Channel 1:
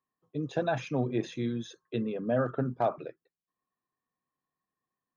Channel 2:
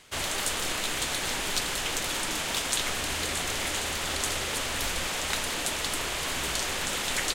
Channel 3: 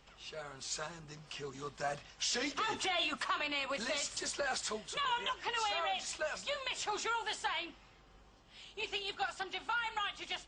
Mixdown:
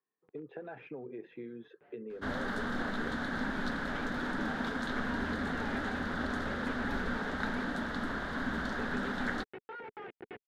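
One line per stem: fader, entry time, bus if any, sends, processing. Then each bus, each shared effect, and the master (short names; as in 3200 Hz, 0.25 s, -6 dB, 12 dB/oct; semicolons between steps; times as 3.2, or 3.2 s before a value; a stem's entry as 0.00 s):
0.0 dB, 0.00 s, bus A, no send, limiter -22.5 dBFS, peak gain reduction 5.5 dB
-3.0 dB, 2.10 s, no bus, no send, EQ curve 140 Hz 0 dB, 240 Hz +15 dB, 340 Hz -1 dB, 1100 Hz -2 dB, 1600 Hz +6 dB, 2500 Hz -21 dB, 3700 Hz -11 dB, 7900 Hz -29 dB
+0.5 dB, 0.00 s, bus A, no send, Schmitt trigger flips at -36.5 dBFS; auto duck -20 dB, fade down 1.20 s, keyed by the first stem
bus A: 0.0 dB, speaker cabinet 260–2200 Hz, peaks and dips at 260 Hz -4 dB, 430 Hz +6 dB, 630 Hz -8 dB, 1100 Hz -9 dB; compressor 4:1, threshold -42 dBFS, peak gain reduction 11.5 dB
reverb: off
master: dry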